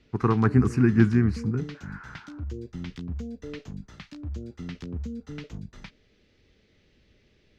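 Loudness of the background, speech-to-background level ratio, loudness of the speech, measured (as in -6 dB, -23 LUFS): -38.5 LUFS, 16.0 dB, -22.5 LUFS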